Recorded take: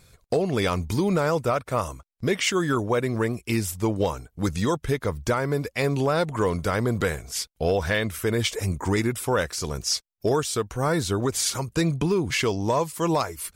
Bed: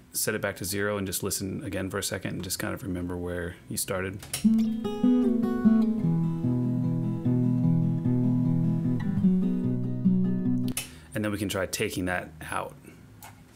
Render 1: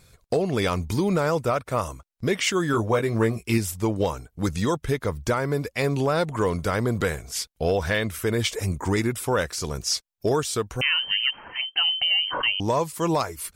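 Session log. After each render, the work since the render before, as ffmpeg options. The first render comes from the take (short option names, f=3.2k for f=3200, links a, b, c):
-filter_complex "[0:a]asettb=1/sr,asplit=3[a][b][c];[a]atrim=end=2.724[d];[b]atrim=start=2.72:end=3.58,asetpts=PTS-STARTPTS,afade=t=in:d=0.004:c=qsin,afade=t=out:st=0.856:d=0.004:c=qsin,asplit=2[e][f];[f]adelay=18,volume=-5dB[g];[e][g]amix=inputs=2:normalize=0,atrim=end_sample=37926[h];[c]atrim=start=3.576[i];[d][h]acrossfade=d=0.004:c1=hsin:c2=qsin[j];[j][i]acrossfade=d=0.004:c1=qsin:c2=hsin,asettb=1/sr,asplit=3[k][l][m];[k]atrim=end=10.814[n];[l]atrim=start=10.81:end=12.6,asetpts=PTS-STARTPTS,afade=t=in:d=0.004:c=qsin,afade=t=out:st=1.786:d=0.004:c=qsin,lowpass=f=2.7k:t=q:w=0.5098,lowpass=f=2.7k:t=q:w=0.6013,lowpass=f=2.7k:t=q:w=0.9,lowpass=f=2.7k:t=q:w=2.563,afreqshift=-3200[o];[m]atrim=start=12.596[p];[n][o]acrossfade=d=0.004:c1=hsin:c2=qsin[q];[q][p]acrossfade=d=0.004:c1=qsin:c2=hsin"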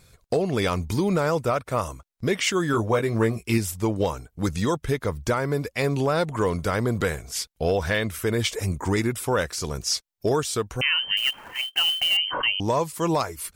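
-filter_complex "[0:a]asettb=1/sr,asplit=3[a][b][c];[a]atrim=end=11.174[d];[b]atrim=start=11.17:end=12.17,asetpts=PTS-STARTPTS,afade=t=in:d=0.004:c=qsin,afade=t=out:st=0.996:d=0.004:c=qsin,acrusher=bits=3:mode=log:mix=0:aa=0.000001[e];[c]atrim=start=12.166[f];[d][e]acrossfade=d=0.004:c1=hsin:c2=qsin[g];[g][f]acrossfade=d=0.004:c1=qsin:c2=hsin"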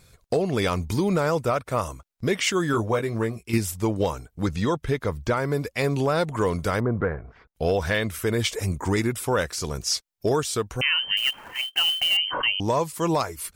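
-filter_complex "[0:a]asettb=1/sr,asplit=3[a][b][c];[a]atrim=end=4.264[d];[b]atrim=start=4.26:end=5.37,asetpts=PTS-STARTPTS,afade=t=in:d=0.004:c=qsin,afade=t=out:st=1.106:d=0.004:c=qsin,acrossover=split=5300[e][f];[f]acompressor=threshold=-51dB:ratio=4:attack=1:release=60[g];[e][g]amix=inputs=2:normalize=0[h];[c]atrim=start=5.366[i];[d][h]acrossfade=d=0.004:c1=hsin:c2=qsin[j];[j][i]acrossfade=d=0.004:c1=qsin:c2=hsin,asettb=1/sr,asplit=3[k][l][m];[k]atrim=end=6.804[n];[l]atrim=start=6.8:end=7.55,asetpts=PTS-STARTPTS,afade=t=in:d=0.004:c=qsin,afade=t=out:st=0.746:d=0.004:c=qsin,lowpass=f=1.6k:w=0.5412,lowpass=f=1.6k:w=1.3066[o];[m]atrim=start=7.546[p];[n][o]acrossfade=d=0.004:c1=hsin:c2=qsin[q];[q][p]acrossfade=d=0.004:c1=qsin:c2=hsin,asplit=2[r][s];[r]atrim=end=3.53,asetpts=PTS-STARTPTS,afade=t=out:st=2.68:d=0.85:silence=0.421697[t];[s]atrim=start=3.53,asetpts=PTS-STARTPTS,afade=t=in:d=0.004:c=hsin:silence=0.421697[u];[t][u]concat=n=2:v=0:a=1"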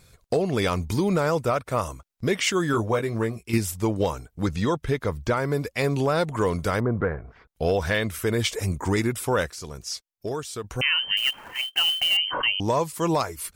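-filter_complex "[0:a]asplit=3[a][b][c];[a]atrim=end=9.502[d];[b]atrim=start=9.498:end=10.642,asetpts=PTS-STARTPTS,volume=-7.5dB[e];[c]atrim=start=10.638[f];[d][e]acrossfade=d=0.004:c1=hsin:c2=hsin[g];[g][f]acrossfade=d=0.004:c1=hsin:c2=hsin"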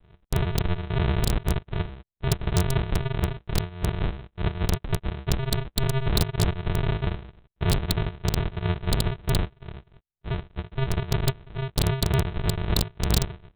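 -af "aresample=8000,acrusher=samples=30:mix=1:aa=0.000001,aresample=44100,aeval=exprs='(mod(5.31*val(0)+1,2)-1)/5.31':c=same"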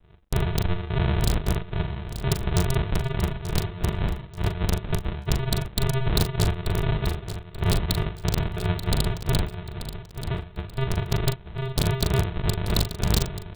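-filter_complex "[0:a]asplit=2[a][b];[b]adelay=40,volume=-9dB[c];[a][c]amix=inputs=2:normalize=0,asplit=2[d][e];[e]aecho=0:1:884|1768|2652:0.282|0.0817|0.0237[f];[d][f]amix=inputs=2:normalize=0"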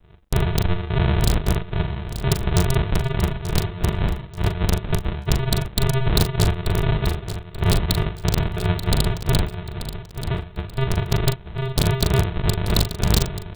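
-af "volume=4dB"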